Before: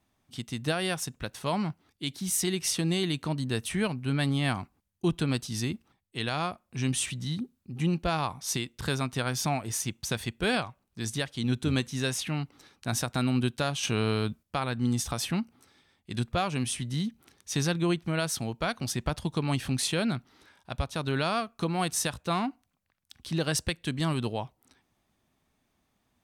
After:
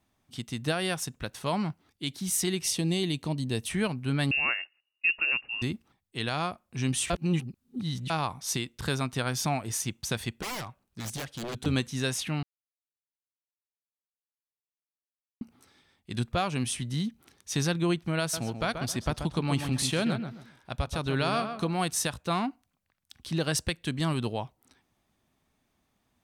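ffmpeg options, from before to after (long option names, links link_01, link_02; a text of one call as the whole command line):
ffmpeg -i in.wav -filter_complex "[0:a]asettb=1/sr,asplit=3[link_01][link_02][link_03];[link_01]atrim=end=2.634[link_04];[link_02]atrim=start=2.63:end=3.66,asetpts=PTS-STARTPTS,afade=type=in:duration=0.004:curve=qsin,afade=type=out:start_time=1.026:duration=0.004:curve=qsin,equalizer=frequency=1400:width_type=o:width=0.68:gain=-10[link_05];[link_03]atrim=start=3.656[link_06];[link_04][link_05]acrossfade=duration=0.004:curve1=hsin:curve2=qsin[link_07];[link_07][link_06]acrossfade=duration=0.004:curve1=qsin:curve2=hsin,asettb=1/sr,asplit=3[link_08][link_09][link_10];[link_08]atrim=end=4.314[link_11];[link_09]atrim=start=4.31:end=5.62,asetpts=PTS-STARTPTS,afade=type=in:duration=0.004:curve=qsin,afade=type=out:start_time=1.306:duration=0.004:curve=qsin,lowpass=frequency=2500:width_type=q:width=0.5098,lowpass=frequency=2500:width_type=q:width=0.6013,lowpass=frequency=2500:width_type=q:width=0.9,lowpass=frequency=2500:width_type=q:width=2.563,afreqshift=-2900[link_12];[link_10]atrim=start=5.616[link_13];[link_11][link_12]acrossfade=duration=0.004:curve1=hsin:curve2=qsin[link_14];[link_14][link_13]acrossfade=duration=0.004:curve1=qsin:curve2=hsin,asettb=1/sr,asplit=3[link_15][link_16][link_17];[link_15]atrim=end=10.424[link_18];[link_16]atrim=start=10.42:end=11.66,asetpts=PTS-STARTPTS,afade=type=in:duration=0.004:curve=qsin,afade=type=out:start_time=1.236:duration=0.004:curve=qsin,aeval=exprs='0.0316*(abs(mod(val(0)/0.0316+3,4)-2)-1)':channel_layout=same[link_19];[link_17]atrim=start=11.656[link_20];[link_18][link_19]acrossfade=duration=0.004:curve1=hsin:curve2=qsin[link_21];[link_21][link_20]acrossfade=duration=0.004:curve1=qsin:curve2=hsin,asettb=1/sr,asplit=3[link_22][link_23][link_24];[link_22]atrim=end=18.204[link_25];[link_23]atrim=start=18.2:end=21.74,asetpts=PTS-STARTPTS,afade=type=in:duration=0.004:curve=qsin,afade=type=out:start_time=3.536:duration=0.004:curve=qsin,asplit=2[link_26][link_27];[link_27]adelay=133,lowpass=frequency=2100:poles=1,volume=-7dB,asplit=2[link_28][link_29];[link_29]adelay=133,lowpass=frequency=2100:poles=1,volume=0.28,asplit=2[link_30][link_31];[link_31]adelay=133,lowpass=frequency=2100:poles=1,volume=0.28[link_32];[link_26][link_28][link_30][link_32]amix=inputs=4:normalize=0,atrim=end_sample=156114[link_33];[link_24]atrim=start=21.736[link_34];[link_25][link_33]acrossfade=duration=0.004:curve1=hsin:curve2=qsin[link_35];[link_35][link_34]acrossfade=duration=0.004:curve1=qsin:curve2=hsin,asplit=5[link_36][link_37][link_38][link_39][link_40];[link_36]atrim=end=7.102[link_41];[link_37]atrim=start=7.098:end=8.102,asetpts=PTS-STARTPTS,areverse[link_42];[link_38]atrim=start=8.098:end=12.43,asetpts=PTS-STARTPTS,afade=type=out:start_time=4.328:duration=0.004:curve=hsin[link_43];[link_39]atrim=start=12.43:end=15.41,asetpts=PTS-STARTPTS,volume=0[link_44];[link_40]atrim=start=15.41,asetpts=PTS-STARTPTS,afade=type=in:duration=0.004:curve=hsin[link_45];[link_41][link_42]acrossfade=duration=0.004:curve1=hsin:curve2=hsin[link_46];[link_43][link_44][link_45]concat=n=3:v=0:a=1[link_47];[link_46][link_47]acrossfade=duration=0.004:curve1=hsin:curve2=hsin" out.wav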